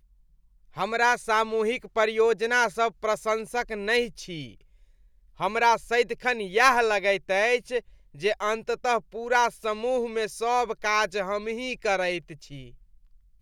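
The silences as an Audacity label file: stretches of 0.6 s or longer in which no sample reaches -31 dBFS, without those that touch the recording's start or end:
4.450000	5.400000	silence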